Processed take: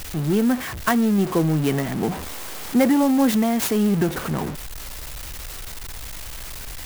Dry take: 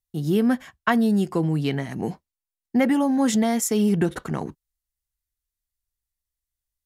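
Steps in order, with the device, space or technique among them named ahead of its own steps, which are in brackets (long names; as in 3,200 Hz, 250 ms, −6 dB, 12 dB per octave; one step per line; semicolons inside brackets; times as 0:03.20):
0:01.18–0:03.31: parametric band 560 Hz +3.5 dB 2.7 octaves
early CD player with a faulty converter (converter with a step at zero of −24.5 dBFS; converter with an unsteady clock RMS 0.04 ms)
level −1 dB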